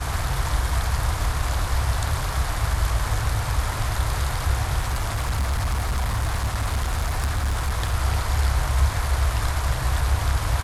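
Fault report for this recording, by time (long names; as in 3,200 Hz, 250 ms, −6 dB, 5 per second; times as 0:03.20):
0:04.79–0:07.94: clipping −19.5 dBFS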